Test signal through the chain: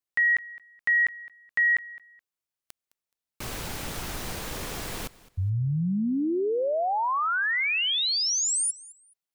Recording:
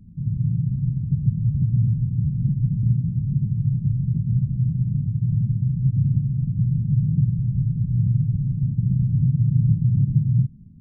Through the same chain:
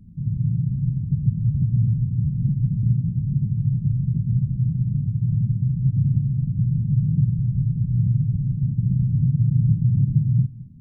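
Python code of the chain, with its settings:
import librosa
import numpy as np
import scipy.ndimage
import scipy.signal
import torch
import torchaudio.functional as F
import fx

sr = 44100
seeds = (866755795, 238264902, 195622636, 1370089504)

y = fx.echo_feedback(x, sr, ms=212, feedback_pct=23, wet_db=-20.5)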